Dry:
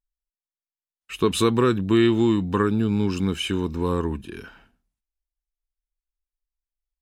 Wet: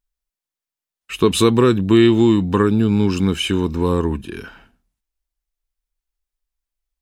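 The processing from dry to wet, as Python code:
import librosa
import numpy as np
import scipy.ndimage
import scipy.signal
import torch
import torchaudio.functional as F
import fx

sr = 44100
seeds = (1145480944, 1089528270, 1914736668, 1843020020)

y = fx.dynamic_eq(x, sr, hz=1400.0, q=1.6, threshold_db=-35.0, ratio=4.0, max_db=-4)
y = F.gain(torch.from_numpy(y), 6.0).numpy()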